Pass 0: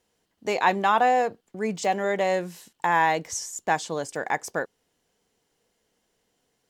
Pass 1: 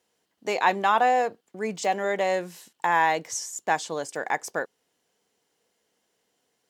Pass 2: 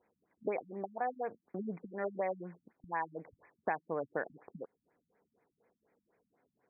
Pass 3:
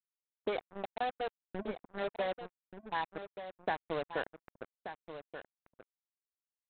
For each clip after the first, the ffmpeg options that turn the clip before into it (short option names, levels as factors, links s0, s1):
-af "highpass=f=260:p=1"
-af "acompressor=threshold=0.0224:ratio=6,afftfilt=real='re*lt(b*sr/1024,240*pow(2600/240,0.5+0.5*sin(2*PI*4.1*pts/sr)))':imag='im*lt(b*sr/1024,240*pow(2600/240,0.5+0.5*sin(2*PI*4.1*pts/sr)))':win_size=1024:overlap=0.75,volume=1.19"
-af "aresample=8000,acrusher=bits=5:mix=0:aa=0.5,aresample=44100,aecho=1:1:1181:0.299"